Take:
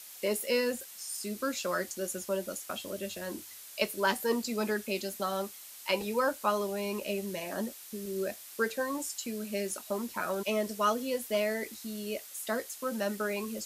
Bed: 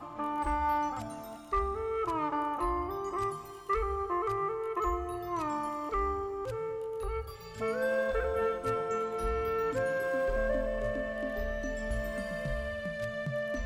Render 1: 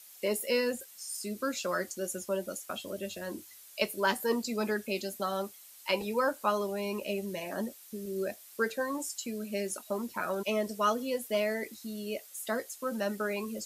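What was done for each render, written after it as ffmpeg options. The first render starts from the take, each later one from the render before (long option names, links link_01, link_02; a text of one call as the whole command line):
ffmpeg -i in.wav -af "afftdn=noise_reduction=7:noise_floor=-49" out.wav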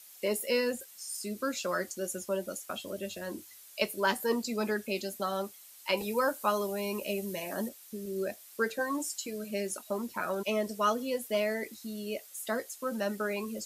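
ffmpeg -i in.wav -filter_complex "[0:a]asettb=1/sr,asplit=3[link_01][link_02][link_03];[link_01]atrim=end=5.974[link_04];[link_02]atrim=start=5.97:end=7.69,asetpts=PTS-STARTPTS,afade=type=in:duration=0.004:curve=qsin,afade=type=out:start_time=1.716:duration=0.004:curve=qsin,highshelf=frequency=7600:gain=8[link_05];[link_03]atrim=start=7.686[link_06];[link_04][link_05]acrossfade=duration=0.004:curve1=hsin:curve2=qsin[link_07];[link_07][link_06]acrossfade=duration=0.004:curve1=qsin:curve2=hsin,asettb=1/sr,asplit=3[link_08][link_09][link_10];[link_08]atrim=end=8.784[link_11];[link_09]atrim=start=8.78:end=9.51,asetpts=PTS-STARTPTS,afade=type=in:duration=0.004:curve=qsin,afade=type=out:start_time=0.726:duration=0.004:curve=qsin,aecho=1:1:6.4:0.58,atrim=end_sample=32193[link_12];[link_10]atrim=start=9.506[link_13];[link_11][link_12]acrossfade=duration=0.004:curve1=hsin:curve2=qsin[link_14];[link_14][link_13]acrossfade=duration=0.004:curve1=qsin:curve2=hsin" out.wav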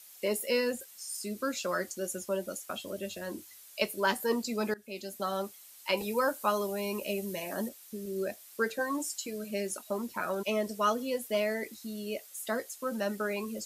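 ffmpeg -i in.wav -filter_complex "[0:a]asplit=2[link_01][link_02];[link_01]atrim=end=4.74,asetpts=PTS-STARTPTS,afade=type=out:start_time=4.736:duration=0.004:curve=hsin:silence=0.0749894[link_03];[link_02]atrim=start=4.74,asetpts=PTS-STARTPTS,afade=type=in:duration=0.54:silence=0.0749894[link_04];[link_03][link_04]concat=n=2:v=0:a=1" out.wav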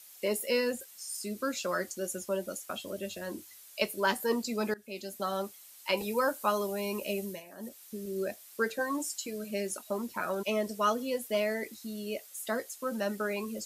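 ffmpeg -i in.wav -filter_complex "[0:a]asplit=3[link_01][link_02][link_03];[link_01]atrim=end=7.43,asetpts=PTS-STARTPTS,afade=type=out:start_time=7.18:duration=0.25:curve=qsin:silence=0.223872[link_04];[link_02]atrim=start=7.43:end=7.59,asetpts=PTS-STARTPTS,volume=-13dB[link_05];[link_03]atrim=start=7.59,asetpts=PTS-STARTPTS,afade=type=in:duration=0.25:curve=qsin:silence=0.223872[link_06];[link_04][link_05][link_06]concat=n=3:v=0:a=1" out.wav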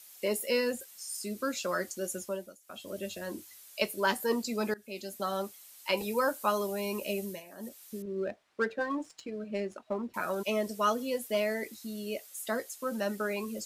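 ffmpeg -i in.wav -filter_complex "[0:a]asettb=1/sr,asplit=3[link_01][link_02][link_03];[link_01]atrim=end=8.024[link_04];[link_02]atrim=start=8.02:end=10.14,asetpts=PTS-STARTPTS,afade=type=in:duration=0.004:curve=qsin,afade=type=out:start_time=2.116:duration=0.004:curve=qsin,adynamicsmooth=sensitivity=4:basefreq=1800[link_05];[link_03]atrim=start=10.136[link_06];[link_04][link_05]acrossfade=duration=0.004:curve1=hsin:curve2=qsin[link_07];[link_07][link_06]acrossfade=duration=0.004:curve1=qsin:curve2=hsin,asplit=3[link_08][link_09][link_10];[link_08]atrim=end=2.57,asetpts=PTS-STARTPTS,afade=type=out:start_time=2.2:duration=0.37:silence=0.1[link_11];[link_09]atrim=start=2.57:end=2.61,asetpts=PTS-STARTPTS,volume=-20dB[link_12];[link_10]atrim=start=2.61,asetpts=PTS-STARTPTS,afade=type=in:duration=0.37:silence=0.1[link_13];[link_11][link_12][link_13]concat=n=3:v=0:a=1" out.wav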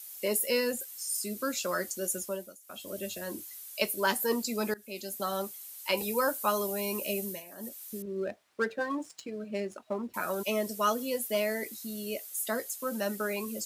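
ffmpeg -i in.wav -af "highpass=47,highshelf=frequency=8600:gain=11.5" out.wav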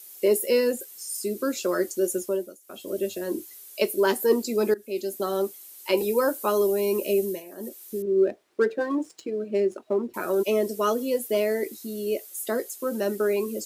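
ffmpeg -i in.wav -af "equalizer=frequency=370:width=1.6:gain=15" out.wav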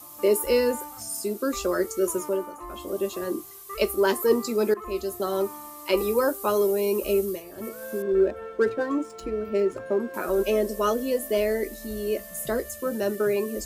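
ffmpeg -i in.wav -i bed.wav -filter_complex "[1:a]volume=-8dB[link_01];[0:a][link_01]amix=inputs=2:normalize=0" out.wav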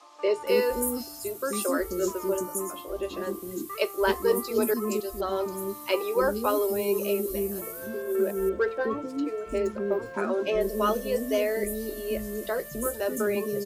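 ffmpeg -i in.wav -filter_complex "[0:a]acrossover=split=370|5500[link_01][link_02][link_03];[link_01]adelay=260[link_04];[link_03]adelay=470[link_05];[link_04][link_02][link_05]amix=inputs=3:normalize=0" out.wav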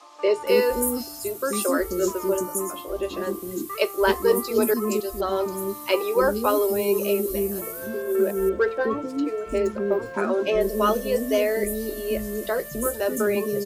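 ffmpeg -i in.wav -af "volume=4dB" out.wav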